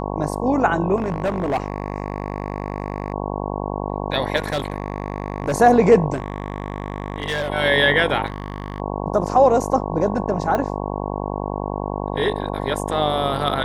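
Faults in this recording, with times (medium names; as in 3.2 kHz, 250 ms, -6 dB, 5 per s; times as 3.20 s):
buzz 50 Hz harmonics 22 -26 dBFS
0.96–3.14 s: clipped -17 dBFS
4.36–5.54 s: clipped -17.5 dBFS
6.13–7.50 s: clipped -19.5 dBFS
8.26–8.80 s: clipped -22.5 dBFS
10.55 s: pop -10 dBFS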